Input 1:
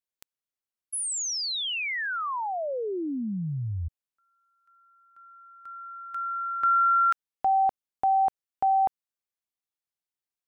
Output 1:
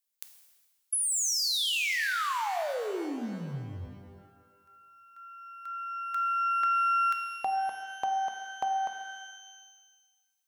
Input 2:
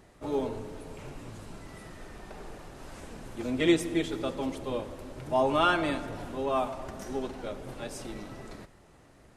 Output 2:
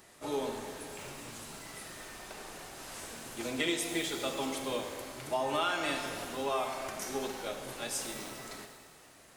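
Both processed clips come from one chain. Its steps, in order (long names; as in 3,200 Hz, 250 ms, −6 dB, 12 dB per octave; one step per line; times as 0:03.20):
spectral tilt +3 dB per octave
downward compressor 6 to 1, threshold −29 dBFS
reverb with rising layers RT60 1.4 s, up +12 semitones, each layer −8 dB, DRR 5.5 dB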